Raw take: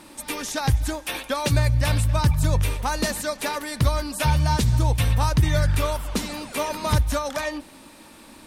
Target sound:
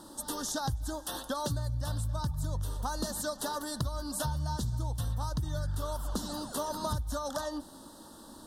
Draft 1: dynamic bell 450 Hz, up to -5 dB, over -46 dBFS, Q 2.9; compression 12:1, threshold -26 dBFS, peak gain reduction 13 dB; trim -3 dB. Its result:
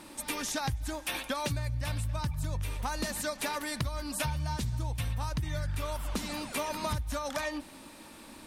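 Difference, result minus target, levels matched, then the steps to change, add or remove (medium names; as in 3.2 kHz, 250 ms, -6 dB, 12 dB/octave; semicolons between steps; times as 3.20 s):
2 kHz band +7.5 dB
add after compression: Butterworth band-stop 2.3 kHz, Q 1.1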